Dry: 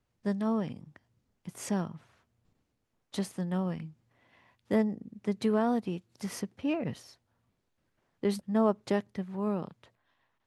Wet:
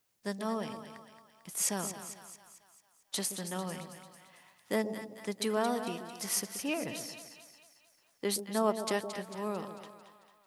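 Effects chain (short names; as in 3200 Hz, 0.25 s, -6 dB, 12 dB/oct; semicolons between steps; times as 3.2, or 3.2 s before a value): RIAA curve recording; split-band echo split 730 Hz, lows 0.127 s, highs 0.223 s, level -9 dB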